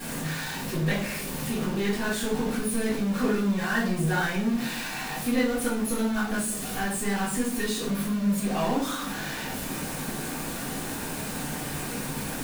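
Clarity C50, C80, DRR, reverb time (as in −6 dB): 4.5 dB, 10.0 dB, −12.5 dB, 0.55 s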